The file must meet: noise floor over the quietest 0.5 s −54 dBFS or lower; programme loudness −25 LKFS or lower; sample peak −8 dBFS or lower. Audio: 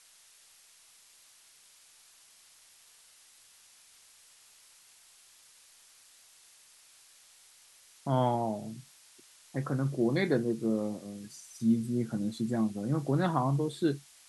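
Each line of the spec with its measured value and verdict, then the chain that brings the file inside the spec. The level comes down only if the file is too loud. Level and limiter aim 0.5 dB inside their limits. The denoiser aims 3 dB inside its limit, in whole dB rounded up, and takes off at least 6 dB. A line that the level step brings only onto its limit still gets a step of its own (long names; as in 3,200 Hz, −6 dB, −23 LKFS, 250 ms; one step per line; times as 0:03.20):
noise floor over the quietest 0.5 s −60 dBFS: in spec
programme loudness −31.0 LKFS: in spec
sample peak −15.0 dBFS: in spec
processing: no processing needed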